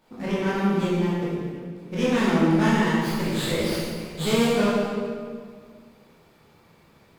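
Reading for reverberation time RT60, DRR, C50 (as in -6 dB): 1.9 s, -9.5 dB, -2.5 dB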